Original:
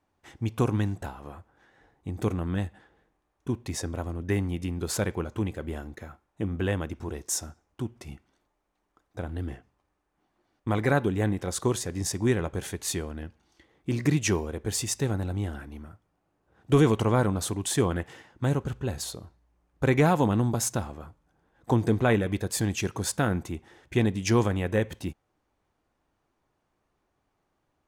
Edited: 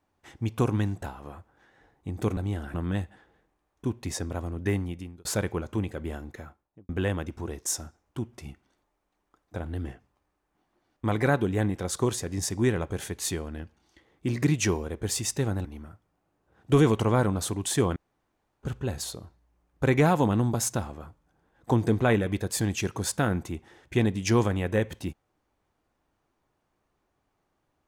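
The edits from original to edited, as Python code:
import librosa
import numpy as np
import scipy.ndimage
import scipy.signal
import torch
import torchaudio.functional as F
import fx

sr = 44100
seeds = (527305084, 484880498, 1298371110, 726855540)

y = fx.studio_fade_out(x, sr, start_s=6.02, length_s=0.5)
y = fx.edit(y, sr, fx.fade_out_span(start_s=4.36, length_s=0.52),
    fx.move(start_s=15.28, length_s=0.37, to_s=2.37),
    fx.room_tone_fill(start_s=17.96, length_s=0.67), tone=tone)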